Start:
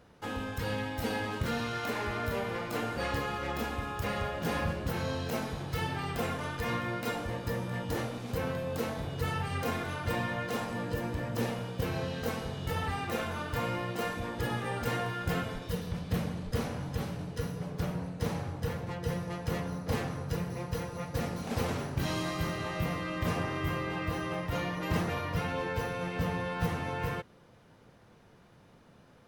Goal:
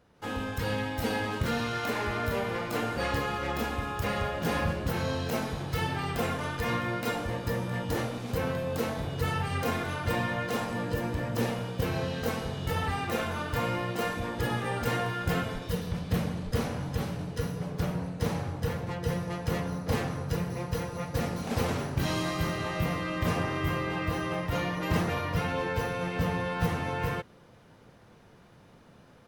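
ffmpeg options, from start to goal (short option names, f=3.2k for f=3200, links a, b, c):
-af "dynaudnorm=f=140:g=3:m=8.5dB,volume=-5.5dB"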